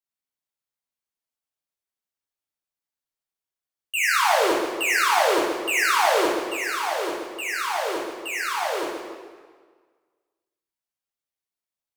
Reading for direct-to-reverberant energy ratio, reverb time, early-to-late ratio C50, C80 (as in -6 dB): -5.0 dB, 1.6 s, 0.0 dB, 2.5 dB